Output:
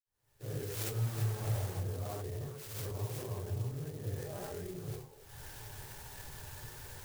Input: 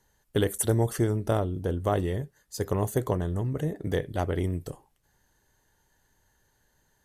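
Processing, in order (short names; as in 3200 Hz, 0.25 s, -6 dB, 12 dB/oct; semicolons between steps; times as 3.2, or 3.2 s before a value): 0.8–1.54 half-waves squared off; recorder AGC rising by 49 dB/s; 4.07–4.59 comb 5 ms, depth 77%; reverb, pre-delay 47 ms; flange 1.3 Hz, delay 1.2 ms, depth 8.4 ms, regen -52%; delay with a stepping band-pass 0.118 s, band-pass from 180 Hz, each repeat 1.4 oct, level -8 dB; compressor 3:1, threshold -40 dBFS, peak gain reduction 10 dB; fifteen-band EQ 100 Hz +10 dB, 250 Hz -10 dB, 10000 Hz +9 dB; 2.06–2.95 transient shaper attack -12 dB, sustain +4 dB; clock jitter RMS 0.092 ms; gain +1.5 dB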